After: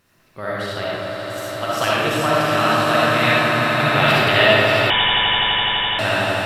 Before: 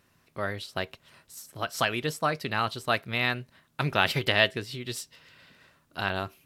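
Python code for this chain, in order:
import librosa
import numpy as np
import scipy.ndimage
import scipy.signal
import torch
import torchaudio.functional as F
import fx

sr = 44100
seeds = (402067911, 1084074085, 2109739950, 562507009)

p1 = fx.level_steps(x, sr, step_db=14)
p2 = x + (p1 * 10.0 ** (-2.0 / 20.0))
p3 = fx.quant_dither(p2, sr, seeds[0], bits=12, dither='none')
p4 = p3 + fx.echo_swell(p3, sr, ms=84, loudest=8, wet_db=-10.5, dry=0)
p5 = fx.rev_freeverb(p4, sr, rt60_s=1.8, hf_ratio=0.55, predelay_ms=20, drr_db=-6.5)
p6 = fx.freq_invert(p5, sr, carrier_hz=3600, at=(4.9, 5.99))
y = p6 * 10.0 ** (-1.5 / 20.0)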